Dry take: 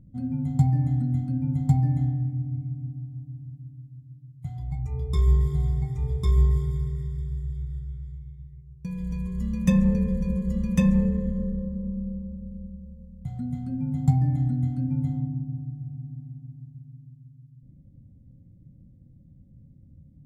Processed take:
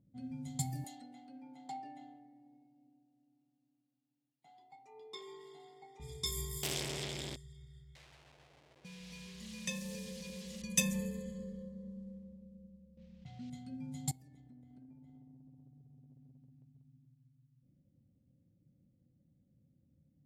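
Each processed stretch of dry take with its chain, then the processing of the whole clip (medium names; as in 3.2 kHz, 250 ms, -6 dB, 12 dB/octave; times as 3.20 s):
0.84–6.00 s: high-pass 320 Hz 24 dB/octave + peaking EQ 4.3 kHz +5 dB 0.58 oct + small resonant body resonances 830/2800 Hz, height 17 dB, ringing for 95 ms
6.63–7.36 s: comb filter that takes the minimum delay 0.37 ms + overdrive pedal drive 36 dB, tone 2.6 kHz, clips at -18.5 dBFS + decimation joined by straight lines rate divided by 2×
7.95–10.62 s: word length cut 8-bit, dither none + bass shelf 210 Hz -6 dB + compression 2:1, threshold -27 dBFS
12.97–13.50 s: modulation noise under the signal 29 dB + distance through air 170 m + level flattener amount 50%
14.11–17.05 s: peaking EQ 67 Hz +12 dB 1.1 oct + comb 4.5 ms, depth 53% + compression 10:1, threshold -38 dBFS
whole clip: peaking EQ 1.3 kHz -13 dB 1.4 oct; level-controlled noise filter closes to 1.3 kHz, open at -19.5 dBFS; differentiator; trim +15.5 dB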